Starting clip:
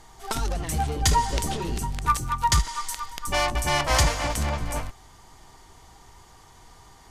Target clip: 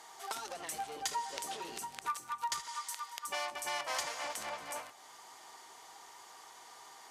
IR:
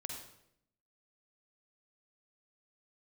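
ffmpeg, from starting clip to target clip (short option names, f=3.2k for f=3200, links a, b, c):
-filter_complex "[0:a]highpass=550,acompressor=threshold=-45dB:ratio=2,asplit=2[a][b];[1:a]atrim=start_sample=2205,adelay=68[c];[b][c]afir=irnorm=-1:irlink=0,volume=-17.5dB[d];[a][d]amix=inputs=2:normalize=0"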